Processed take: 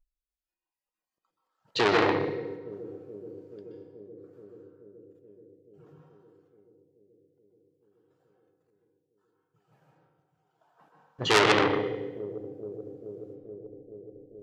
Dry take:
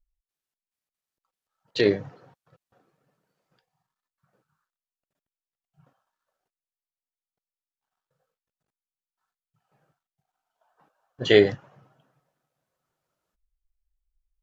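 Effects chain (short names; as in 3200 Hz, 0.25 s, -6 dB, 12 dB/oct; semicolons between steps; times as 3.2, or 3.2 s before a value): analogue delay 0.429 s, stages 2048, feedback 77%, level -20.5 dB; reverb RT60 1.1 s, pre-delay 0.122 s, DRR -1.5 dB; spectral noise reduction 12 dB; core saturation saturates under 3800 Hz; gain +1.5 dB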